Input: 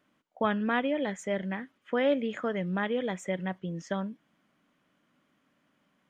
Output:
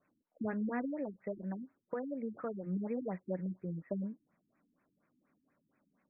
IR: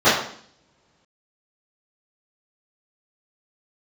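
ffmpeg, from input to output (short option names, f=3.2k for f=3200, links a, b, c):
-filter_complex "[0:a]acrossover=split=530[a][b];[b]alimiter=level_in=2.5dB:limit=-24dB:level=0:latency=1:release=339,volume=-2.5dB[c];[a][c]amix=inputs=2:normalize=0,asettb=1/sr,asplit=3[d][e][f];[d]atrim=end=0.834[g];[e]atrim=start=0.83:end=2.67,asetpts=PTS-STARTPTS,afade=t=in:d=0.004:c=qsin,afade=t=out:st=1.836:d=0.004:c=qsin,acompressor=threshold=-30dB:ratio=6[h];[f]atrim=start=2.666[i];[g][h]acrossfade=d=0.004:c1=hsin:c2=qsin[j];[j][i]acrossfade=d=0.004:c1=qsin:c2=hsin,flanger=delay=1.4:depth=3.1:regen=-59:speed=1.6:shape=triangular,afftfilt=real='re*lt(b*sr/1024,340*pow(2700/340,0.5+0.5*sin(2*PI*4.2*pts/sr)))':imag='im*lt(b*sr/1024,340*pow(2700/340,0.5+0.5*sin(2*PI*4.2*pts/sr)))':win_size=1024:overlap=0.75"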